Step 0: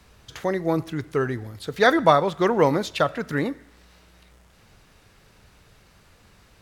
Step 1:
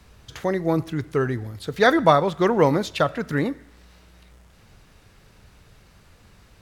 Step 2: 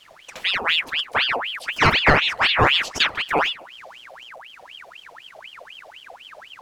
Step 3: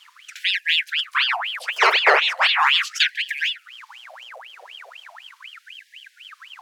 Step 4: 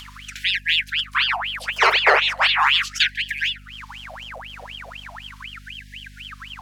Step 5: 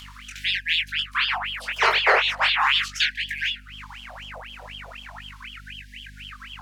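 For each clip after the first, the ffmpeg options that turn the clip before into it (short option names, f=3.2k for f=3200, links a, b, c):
-af "lowshelf=f=220:g=4.5"
-af "asubboost=boost=3:cutoff=200,aeval=exprs='val(0)*sin(2*PI*1900*n/s+1900*0.7/4*sin(2*PI*4*n/s))':c=same,volume=3.5dB"
-af "afftfilt=real='re*gte(b*sr/1024,360*pow(1600/360,0.5+0.5*sin(2*PI*0.38*pts/sr)))':imag='im*gte(b*sr/1024,360*pow(1600/360,0.5+0.5*sin(2*PI*0.38*pts/sr)))':win_size=1024:overlap=0.75,volume=1dB"
-filter_complex "[0:a]asplit=2[a][b];[b]acompressor=mode=upward:threshold=-25dB:ratio=2.5,volume=-1dB[c];[a][c]amix=inputs=2:normalize=0,aeval=exprs='val(0)+0.0126*(sin(2*PI*50*n/s)+sin(2*PI*2*50*n/s)/2+sin(2*PI*3*50*n/s)/3+sin(2*PI*4*50*n/s)/4+sin(2*PI*5*50*n/s)/5)':c=same,volume=-5.5dB"
-af "flanger=delay=19.5:depth=4.7:speed=2.1"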